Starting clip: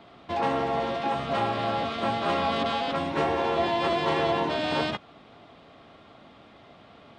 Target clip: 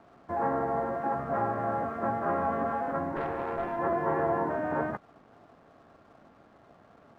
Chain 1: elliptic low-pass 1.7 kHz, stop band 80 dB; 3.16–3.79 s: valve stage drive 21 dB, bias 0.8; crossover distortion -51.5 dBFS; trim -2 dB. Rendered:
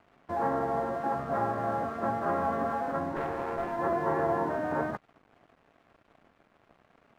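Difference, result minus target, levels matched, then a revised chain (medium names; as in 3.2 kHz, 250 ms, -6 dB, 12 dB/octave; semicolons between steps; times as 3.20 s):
crossover distortion: distortion +9 dB
elliptic low-pass 1.7 kHz, stop band 80 dB; 3.16–3.79 s: valve stage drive 21 dB, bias 0.8; crossover distortion -61.5 dBFS; trim -2 dB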